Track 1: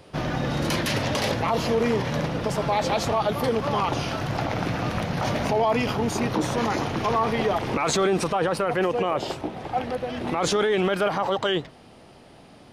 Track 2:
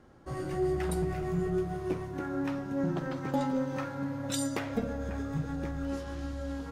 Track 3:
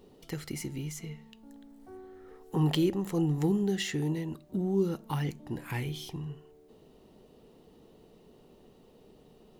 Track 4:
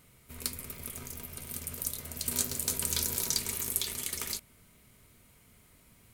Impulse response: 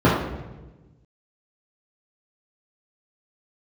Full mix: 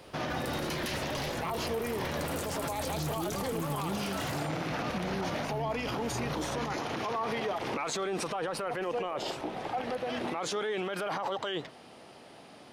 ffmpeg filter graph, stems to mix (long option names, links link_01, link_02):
-filter_complex "[0:a]highpass=frequency=330:poles=1,alimiter=limit=-22dB:level=0:latency=1:release=77,volume=0dB[link_01];[1:a]alimiter=level_in=9.5dB:limit=-24dB:level=0:latency=1,volume=-9.5dB,adelay=50,volume=-2dB[link_02];[2:a]lowshelf=frequency=130:gain=10,adelay=400,volume=-7dB[link_03];[3:a]equalizer=frequency=71:width_type=o:width=2.3:gain=14,volume=-9dB,asplit=2[link_04][link_05];[link_05]volume=-8dB,aecho=0:1:79:1[link_06];[link_01][link_02][link_03][link_04][link_06]amix=inputs=5:normalize=0,alimiter=level_in=1dB:limit=-24dB:level=0:latency=1:release=28,volume=-1dB"